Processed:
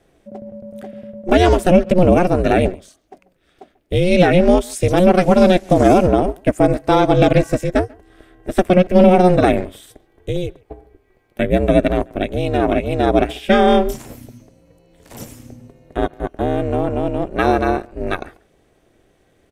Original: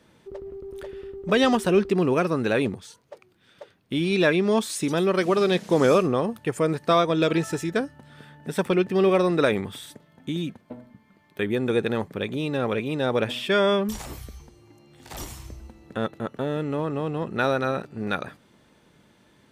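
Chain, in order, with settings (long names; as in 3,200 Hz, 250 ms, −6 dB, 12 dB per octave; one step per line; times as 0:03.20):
octave-band graphic EQ 500/1,000/4,000 Hz +4/−8/−6 dB
far-end echo of a speakerphone 140 ms, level −19 dB
ring modulation 180 Hz
boost into a limiter +14 dB
expander for the loud parts 1.5 to 1, over −27 dBFS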